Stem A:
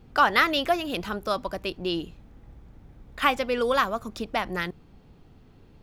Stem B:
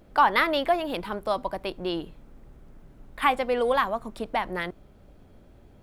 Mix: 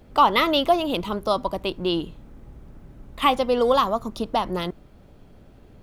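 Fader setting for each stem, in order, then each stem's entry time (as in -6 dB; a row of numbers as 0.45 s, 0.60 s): -1.5 dB, +2.0 dB; 0.00 s, 0.00 s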